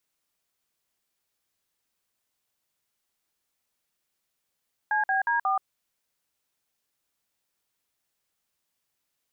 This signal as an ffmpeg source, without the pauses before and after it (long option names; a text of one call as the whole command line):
ffmpeg -f lavfi -i "aevalsrc='0.0596*clip(min(mod(t,0.18),0.128-mod(t,0.18))/0.002,0,1)*(eq(floor(t/0.18),0)*(sin(2*PI*852*mod(t,0.18))+sin(2*PI*1633*mod(t,0.18)))+eq(floor(t/0.18),1)*(sin(2*PI*770*mod(t,0.18))+sin(2*PI*1633*mod(t,0.18)))+eq(floor(t/0.18),2)*(sin(2*PI*941*mod(t,0.18))+sin(2*PI*1633*mod(t,0.18)))+eq(floor(t/0.18),3)*(sin(2*PI*770*mod(t,0.18))+sin(2*PI*1209*mod(t,0.18))))':duration=0.72:sample_rate=44100" out.wav